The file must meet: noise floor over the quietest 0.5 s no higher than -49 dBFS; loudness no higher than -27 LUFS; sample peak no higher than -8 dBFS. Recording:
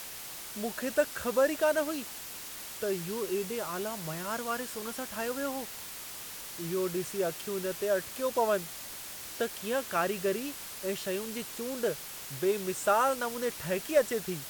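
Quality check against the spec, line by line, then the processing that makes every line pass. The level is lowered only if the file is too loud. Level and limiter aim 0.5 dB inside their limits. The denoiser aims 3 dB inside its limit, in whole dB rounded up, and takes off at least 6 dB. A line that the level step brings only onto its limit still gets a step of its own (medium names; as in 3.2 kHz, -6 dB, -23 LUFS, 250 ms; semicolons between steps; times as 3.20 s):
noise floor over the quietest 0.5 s -43 dBFS: fail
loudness -32.5 LUFS: pass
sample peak -13.0 dBFS: pass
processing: noise reduction 9 dB, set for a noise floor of -43 dBFS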